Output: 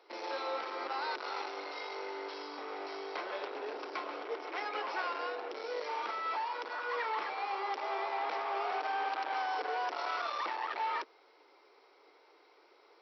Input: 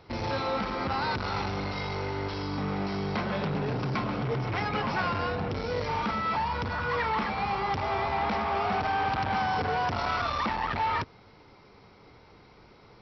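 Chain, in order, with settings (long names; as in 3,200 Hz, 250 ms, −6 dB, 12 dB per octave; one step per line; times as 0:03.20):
Butterworth high-pass 330 Hz 48 dB per octave
level −6.5 dB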